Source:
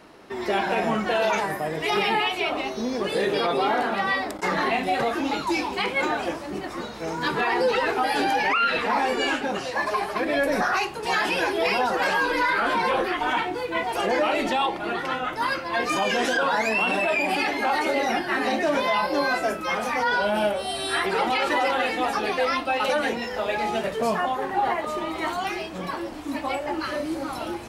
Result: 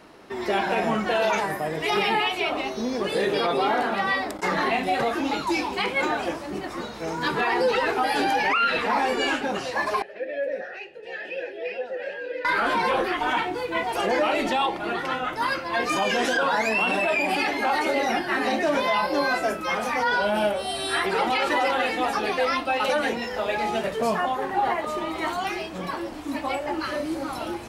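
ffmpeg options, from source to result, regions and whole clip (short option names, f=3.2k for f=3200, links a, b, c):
-filter_complex "[0:a]asettb=1/sr,asplit=3[a][b][c];[a]atrim=end=10.024[d];[b]atrim=start=10.02:end=12.45,asetpts=PTS-STARTPTS,afade=t=in:d=0.004:c=qsin,afade=t=out:st=2.426:d=0.004:c=qsin,asplit=3[e][f][g];[e]bandpass=f=530:t=q:w=8,volume=0dB[h];[f]bandpass=f=1.84k:t=q:w=8,volume=-6dB[i];[g]bandpass=f=2.48k:t=q:w=8,volume=-9dB[j];[h][i][j]amix=inputs=3:normalize=0,lowshelf=f=140:g=11[k];[c]atrim=start=12.446[l];[d][k]acrossfade=d=0.004:c1=hsin:c2=qsin[m];[m][l]acrossfade=d=0.004:c1=qsin:c2=hsin"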